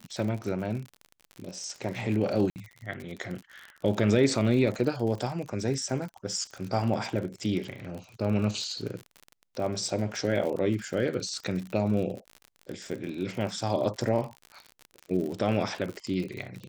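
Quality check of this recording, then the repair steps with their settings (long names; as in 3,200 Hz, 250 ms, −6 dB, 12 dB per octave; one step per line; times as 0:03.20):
surface crackle 53 per second −34 dBFS
0:02.50–0:02.56: drop-out 59 ms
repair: click removal
repair the gap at 0:02.50, 59 ms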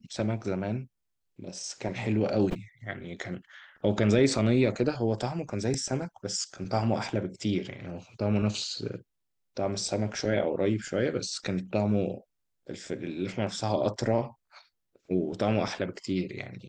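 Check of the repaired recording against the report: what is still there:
none of them is left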